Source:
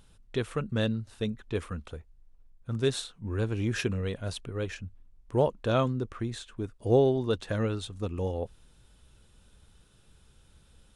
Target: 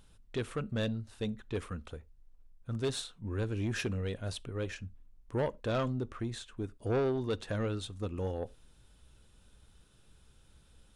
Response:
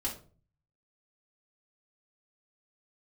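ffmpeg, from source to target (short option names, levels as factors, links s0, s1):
-filter_complex "[0:a]asoftclip=type=tanh:threshold=0.0708,asplit=2[s0][s1];[1:a]atrim=start_sample=2205,afade=t=out:st=0.16:d=0.01,atrim=end_sample=7497[s2];[s1][s2]afir=irnorm=-1:irlink=0,volume=0.0841[s3];[s0][s3]amix=inputs=2:normalize=0,volume=0.708"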